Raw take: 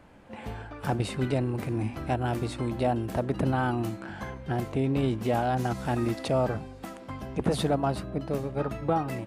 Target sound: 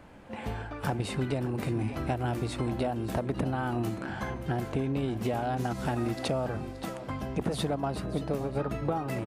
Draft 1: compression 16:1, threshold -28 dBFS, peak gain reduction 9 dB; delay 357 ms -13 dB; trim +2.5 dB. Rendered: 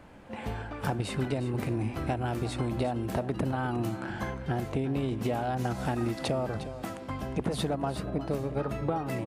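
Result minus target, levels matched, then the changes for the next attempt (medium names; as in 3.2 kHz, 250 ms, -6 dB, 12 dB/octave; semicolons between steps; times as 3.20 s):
echo 220 ms early
change: delay 577 ms -13 dB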